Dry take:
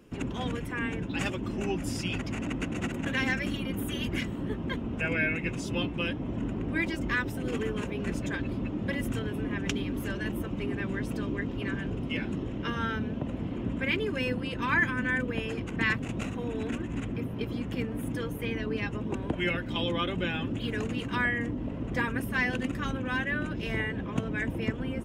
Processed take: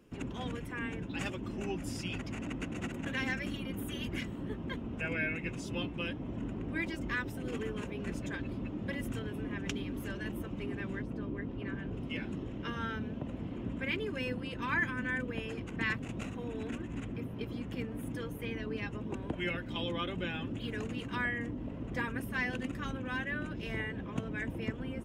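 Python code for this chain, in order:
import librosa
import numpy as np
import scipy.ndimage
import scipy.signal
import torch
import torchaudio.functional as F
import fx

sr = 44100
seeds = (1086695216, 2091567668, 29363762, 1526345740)

y = fx.lowpass(x, sr, hz=fx.line((11.01, 1000.0), (11.93, 2700.0)), slope=6, at=(11.01, 11.93), fade=0.02)
y = y * 10.0 ** (-6.0 / 20.0)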